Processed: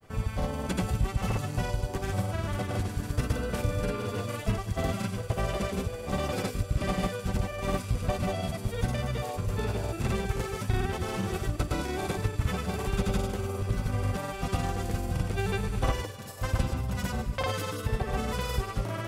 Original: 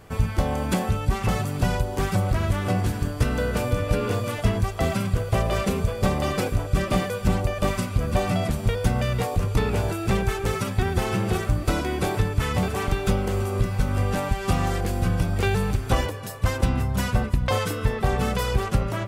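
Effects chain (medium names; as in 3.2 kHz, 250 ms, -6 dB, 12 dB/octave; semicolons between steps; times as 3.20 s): feedback echo behind a high-pass 75 ms, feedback 55%, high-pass 3.8 kHz, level -3 dB; granulator, pitch spread up and down by 0 st; trim -5.5 dB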